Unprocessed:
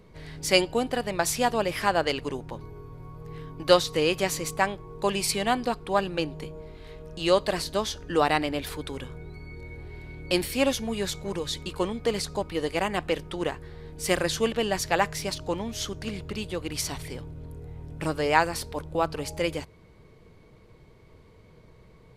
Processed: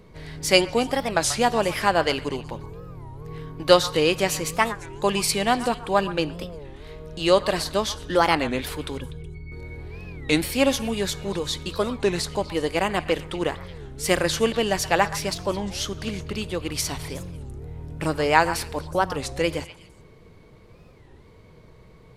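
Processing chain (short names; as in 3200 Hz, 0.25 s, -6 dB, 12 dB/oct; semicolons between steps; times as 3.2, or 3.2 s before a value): 8.98–9.52 spectral contrast raised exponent 1.6; delay with a stepping band-pass 0.123 s, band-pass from 1200 Hz, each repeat 1.4 oct, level -10.5 dB; on a send at -20.5 dB: reverb RT60 0.95 s, pre-delay 12 ms; on the sum: record warp 33 1/3 rpm, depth 250 cents; gain +3.5 dB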